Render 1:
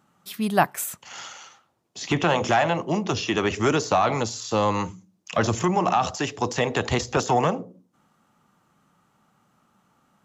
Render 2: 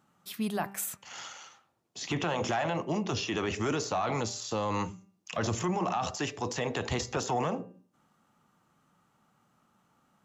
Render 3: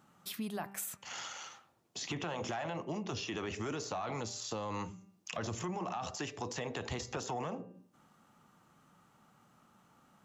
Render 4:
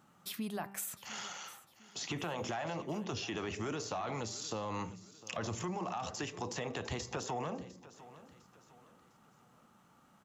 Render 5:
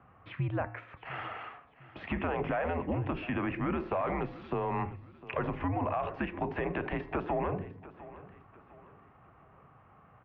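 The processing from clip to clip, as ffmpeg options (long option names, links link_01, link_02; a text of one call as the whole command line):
ffmpeg -i in.wav -af "alimiter=limit=-17.5dB:level=0:latency=1:release=24,bandreject=frequency=197.5:width_type=h:width=4,bandreject=frequency=395:width_type=h:width=4,bandreject=frequency=592.5:width_type=h:width=4,bandreject=frequency=790:width_type=h:width=4,bandreject=frequency=987.5:width_type=h:width=4,bandreject=frequency=1185:width_type=h:width=4,bandreject=frequency=1382.5:width_type=h:width=4,bandreject=frequency=1580:width_type=h:width=4,bandreject=frequency=1777.5:width_type=h:width=4,bandreject=frequency=1975:width_type=h:width=4,bandreject=frequency=2172.5:width_type=h:width=4,bandreject=frequency=2370:width_type=h:width=4,bandreject=frequency=2567.5:width_type=h:width=4,bandreject=frequency=2765:width_type=h:width=4,volume=-4.5dB" out.wav
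ffmpeg -i in.wav -af "acompressor=threshold=-45dB:ratio=2.5,volume=3.5dB" out.wav
ffmpeg -i in.wav -af "aecho=1:1:704|1408|2112:0.133|0.052|0.0203" out.wav
ffmpeg -i in.wav -af "highpass=frequency=150:width_type=q:width=0.5412,highpass=frequency=150:width_type=q:width=1.307,lowpass=frequency=2500:width_type=q:width=0.5176,lowpass=frequency=2500:width_type=q:width=0.7071,lowpass=frequency=2500:width_type=q:width=1.932,afreqshift=-84,volume=7dB" out.wav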